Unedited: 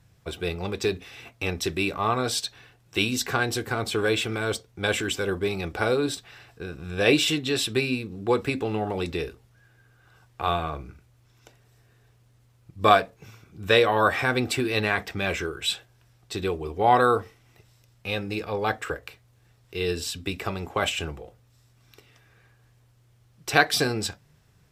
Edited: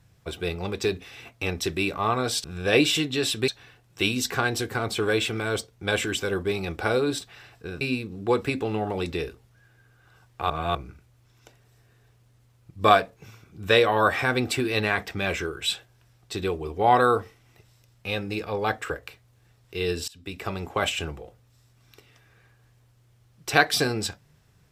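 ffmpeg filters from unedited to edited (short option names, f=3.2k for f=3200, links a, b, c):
-filter_complex "[0:a]asplit=7[a][b][c][d][e][f][g];[a]atrim=end=2.442[h];[b]atrim=start=6.768:end=7.812[i];[c]atrim=start=2.438:end=6.772[j];[d]atrim=start=7.808:end=10.502[k];[e]atrim=start=10.498:end=10.752,asetpts=PTS-STARTPTS,areverse[l];[f]atrim=start=10.748:end=20.08,asetpts=PTS-STARTPTS,afade=t=out:st=9.328:d=0.004:c=hsin:silence=0.0668344[m];[g]atrim=start=20.08,asetpts=PTS-STARTPTS,afade=t=in:d=0.47:silence=0.0668344[n];[h][i]acrossfade=d=0.004:c1=hsin:c2=hsin[o];[o][j]acrossfade=d=0.004:c1=hsin:c2=hsin[p];[p][k]acrossfade=d=0.004:c1=hsin:c2=hsin[q];[q][l]acrossfade=d=0.004:c1=hsin:c2=hsin[r];[m][n]concat=n=2:v=0:a=1[s];[r][s]acrossfade=d=0.004:c1=hsin:c2=hsin"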